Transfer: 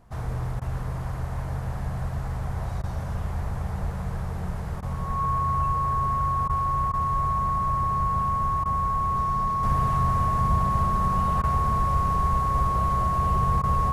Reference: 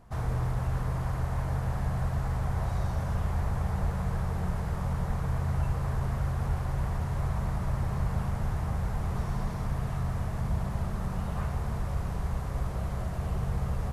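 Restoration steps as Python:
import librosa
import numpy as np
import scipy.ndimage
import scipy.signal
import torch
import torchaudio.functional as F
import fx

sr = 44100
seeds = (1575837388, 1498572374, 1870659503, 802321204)

y = fx.notch(x, sr, hz=1100.0, q=30.0)
y = fx.highpass(y, sr, hz=140.0, slope=24, at=(7.12, 7.24), fade=0.02)
y = fx.highpass(y, sr, hz=140.0, slope=24, at=(10.95, 11.07), fade=0.02)
y = fx.fix_interpolate(y, sr, at_s=(0.6, 2.82, 4.81, 6.48, 6.92, 8.64, 11.42, 13.62), length_ms=14.0)
y = fx.gain(y, sr, db=fx.steps((0.0, 0.0), (9.63, -5.5)))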